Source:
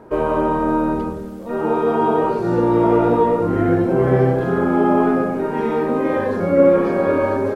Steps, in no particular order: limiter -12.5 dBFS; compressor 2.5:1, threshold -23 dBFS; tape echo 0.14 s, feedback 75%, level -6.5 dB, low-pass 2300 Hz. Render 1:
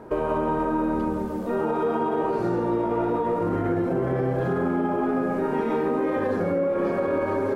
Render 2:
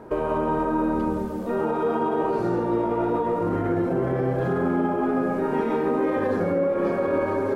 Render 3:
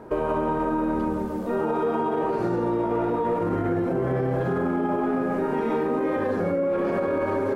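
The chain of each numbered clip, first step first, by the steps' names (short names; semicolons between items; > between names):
limiter > tape echo > compressor; limiter > compressor > tape echo; tape echo > limiter > compressor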